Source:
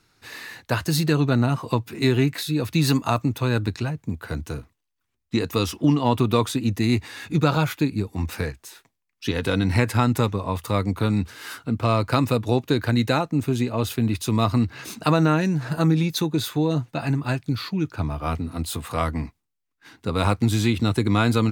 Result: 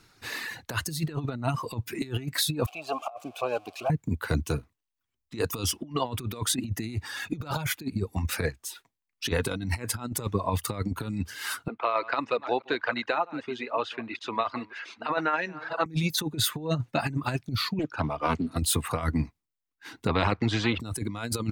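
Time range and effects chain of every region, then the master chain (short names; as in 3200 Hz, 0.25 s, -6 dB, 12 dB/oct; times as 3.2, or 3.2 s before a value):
2.66–3.9 switching spikes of -12.5 dBFS + vowel filter a + bell 600 Hz +12 dB 1.4 oct
11.68–15.86 reverse delay 0.314 s, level -12 dB + BPF 690–2800 Hz + air absorption 74 m
17.79–18.56 three-band isolator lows -13 dB, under 160 Hz, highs -14 dB, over 7100 Hz + Doppler distortion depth 0.42 ms
20.07–20.8 tape spacing loss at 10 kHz 43 dB + spectral compressor 2:1
whole clip: reverb removal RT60 1.2 s; dynamic EQ 9500 Hz, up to +4 dB, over -50 dBFS, Q 2.4; negative-ratio compressor -27 dBFS, ratio -0.5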